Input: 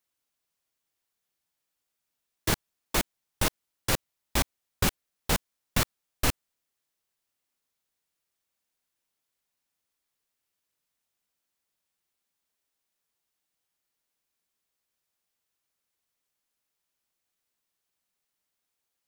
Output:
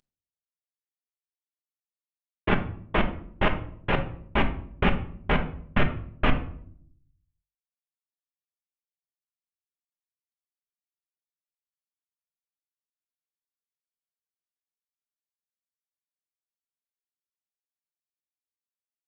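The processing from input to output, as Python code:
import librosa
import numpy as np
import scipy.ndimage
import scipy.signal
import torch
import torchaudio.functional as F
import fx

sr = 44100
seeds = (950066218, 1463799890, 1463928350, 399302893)

p1 = fx.cvsd(x, sr, bps=16000)
p2 = fx.high_shelf(p1, sr, hz=2100.0, db=5.5)
p3 = fx.hum_notches(p2, sr, base_hz=50, count=3)
p4 = 10.0 ** (-25.5 / 20.0) * np.tanh(p3 / 10.0 ** (-25.5 / 20.0))
p5 = p3 + (p4 * 10.0 ** (-12.0 / 20.0))
p6 = fx.room_shoebox(p5, sr, seeds[0], volume_m3=910.0, walls='furnished', distance_m=1.3)
y = p6 * 10.0 ** (4.0 / 20.0)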